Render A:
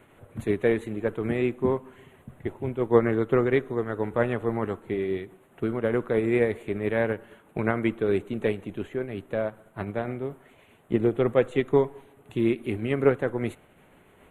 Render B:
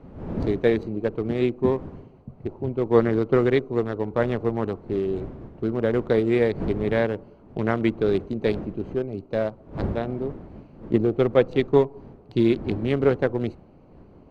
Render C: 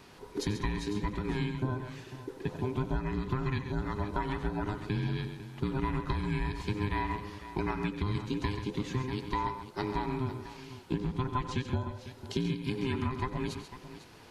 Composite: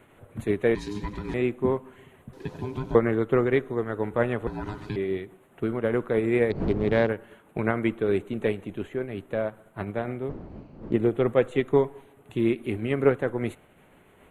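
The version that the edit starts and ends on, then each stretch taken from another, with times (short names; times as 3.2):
A
0.75–1.34 from C
2.33–2.95 from C
4.47–4.96 from C
6.5–7.09 from B
10.29–10.93 from B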